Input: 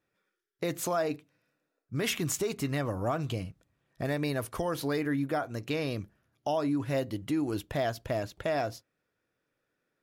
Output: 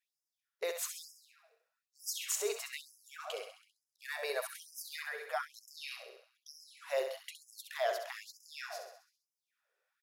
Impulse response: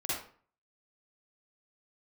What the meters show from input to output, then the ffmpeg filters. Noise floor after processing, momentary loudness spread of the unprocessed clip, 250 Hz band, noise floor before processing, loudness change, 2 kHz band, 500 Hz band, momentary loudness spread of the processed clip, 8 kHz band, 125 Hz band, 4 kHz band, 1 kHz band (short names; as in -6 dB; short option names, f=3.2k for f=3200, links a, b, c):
under -85 dBFS, 8 LU, under -30 dB, -82 dBFS, -7.5 dB, -4.0 dB, -7.5 dB, 17 LU, -1.0 dB, under -40 dB, -3.5 dB, -8.5 dB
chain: -filter_complex "[0:a]aecho=1:1:66|132|198|264|330|396|462:0.422|0.232|0.128|0.0702|0.0386|0.0212|0.0117,asplit=2[a][b];[1:a]atrim=start_sample=2205,adelay=74[c];[b][c]afir=irnorm=-1:irlink=0,volume=-26.5dB[d];[a][d]amix=inputs=2:normalize=0,afftfilt=real='re*gte(b*sr/1024,370*pow(5000/370,0.5+0.5*sin(2*PI*1.1*pts/sr)))':imag='im*gte(b*sr/1024,370*pow(5000/370,0.5+0.5*sin(2*PI*1.1*pts/sr)))':win_size=1024:overlap=0.75,volume=-2dB"